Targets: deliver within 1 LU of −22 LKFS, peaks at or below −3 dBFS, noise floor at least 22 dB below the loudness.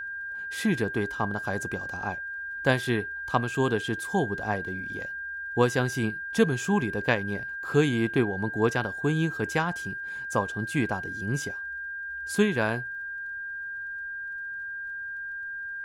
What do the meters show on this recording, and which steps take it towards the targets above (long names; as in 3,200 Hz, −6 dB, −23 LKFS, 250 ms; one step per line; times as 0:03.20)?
crackle rate 20 per second; interfering tone 1,600 Hz; level of the tone −33 dBFS; integrated loudness −28.5 LKFS; sample peak −8.0 dBFS; target loudness −22.0 LKFS
→ click removal
notch filter 1,600 Hz, Q 30
level +6.5 dB
brickwall limiter −3 dBFS